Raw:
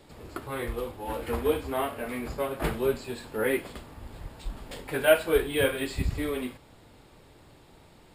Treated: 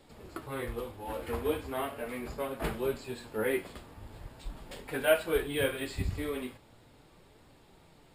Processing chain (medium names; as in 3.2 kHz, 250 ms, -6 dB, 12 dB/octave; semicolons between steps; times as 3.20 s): flange 0.4 Hz, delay 3.7 ms, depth 7.9 ms, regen +67%